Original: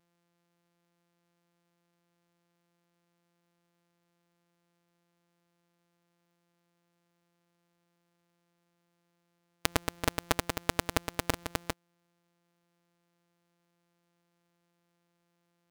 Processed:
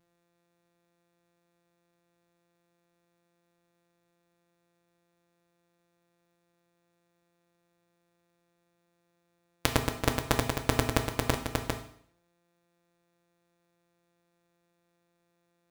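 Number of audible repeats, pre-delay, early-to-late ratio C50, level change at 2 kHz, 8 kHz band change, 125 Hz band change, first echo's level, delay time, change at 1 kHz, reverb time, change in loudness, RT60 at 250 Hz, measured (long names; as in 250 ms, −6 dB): no echo audible, 7 ms, 9.5 dB, +1.5 dB, +1.0 dB, +7.0 dB, no echo audible, no echo audible, +2.0 dB, 0.60 s, +2.5 dB, 0.60 s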